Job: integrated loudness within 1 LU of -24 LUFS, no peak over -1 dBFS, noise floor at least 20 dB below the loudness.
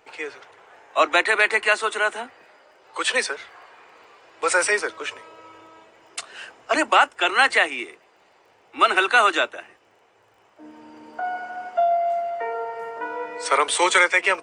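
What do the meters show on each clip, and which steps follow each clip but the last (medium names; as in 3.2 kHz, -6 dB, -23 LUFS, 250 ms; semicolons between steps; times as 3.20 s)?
tick rate 22 per s; loudness -21.0 LUFS; peak level -4.5 dBFS; loudness target -24.0 LUFS
-> de-click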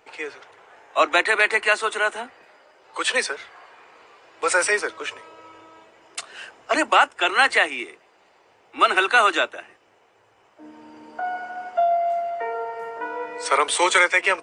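tick rate 0 per s; loudness -21.0 LUFS; peak level -4.5 dBFS; loudness target -24.0 LUFS
-> trim -3 dB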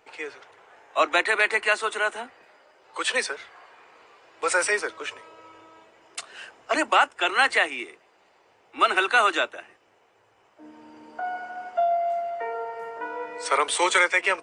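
loudness -24.0 LUFS; peak level -7.5 dBFS; noise floor -62 dBFS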